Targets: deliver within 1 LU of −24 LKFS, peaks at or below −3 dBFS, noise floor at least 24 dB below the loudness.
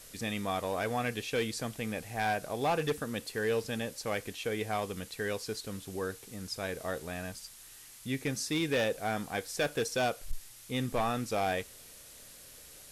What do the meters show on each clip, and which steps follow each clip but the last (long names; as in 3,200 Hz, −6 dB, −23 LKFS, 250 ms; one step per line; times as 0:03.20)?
share of clipped samples 0.7%; peaks flattened at −24.0 dBFS; background noise floor −52 dBFS; target noise floor −58 dBFS; integrated loudness −34.0 LKFS; sample peak −24.0 dBFS; target loudness −24.0 LKFS
→ clipped peaks rebuilt −24 dBFS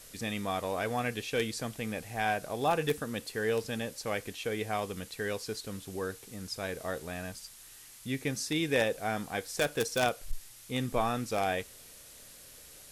share of clipped samples 0.0%; background noise floor −52 dBFS; target noise floor −58 dBFS
→ noise reduction from a noise print 6 dB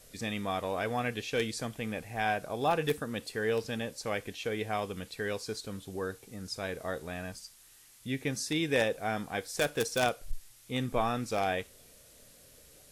background noise floor −58 dBFS; integrated loudness −33.5 LKFS; sample peak −15.0 dBFS; target loudness −24.0 LKFS
→ level +9.5 dB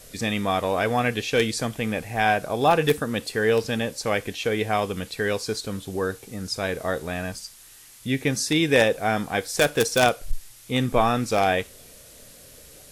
integrated loudness −24.0 LKFS; sample peak −5.5 dBFS; background noise floor −48 dBFS